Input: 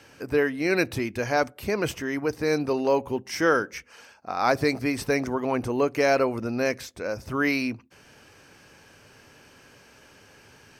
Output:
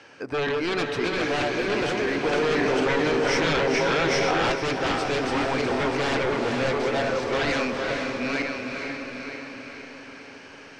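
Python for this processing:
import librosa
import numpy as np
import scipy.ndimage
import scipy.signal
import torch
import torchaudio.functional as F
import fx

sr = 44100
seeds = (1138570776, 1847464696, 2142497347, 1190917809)

y = fx.reverse_delay_fb(x, sr, ms=468, feedback_pct=46, wet_db=-2.5)
y = fx.highpass(y, sr, hz=380.0, slope=6)
y = fx.quant_float(y, sr, bits=4)
y = fx.fold_sine(y, sr, drive_db=9, ceiling_db=-14.0)
y = fx.air_absorb(y, sr, metres=120.0)
y = fx.echo_diffused(y, sr, ms=461, feedback_pct=52, wet_db=-4.0)
y = fx.env_flatten(y, sr, amount_pct=100, at=(2.33, 4.52))
y = y * librosa.db_to_amplitude(-7.5)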